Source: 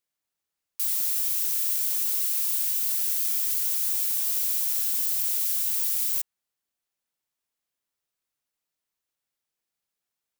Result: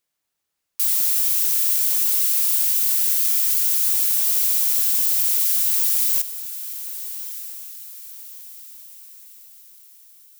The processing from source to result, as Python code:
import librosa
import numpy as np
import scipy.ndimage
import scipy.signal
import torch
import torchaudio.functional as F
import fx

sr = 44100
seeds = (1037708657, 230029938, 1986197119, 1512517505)

y = fx.highpass(x, sr, hz=410.0, slope=6, at=(3.21, 3.91))
y = fx.echo_diffused(y, sr, ms=1263, feedback_pct=42, wet_db=-12.5)
y = y * 10.0 ** (6.5 / 20.0)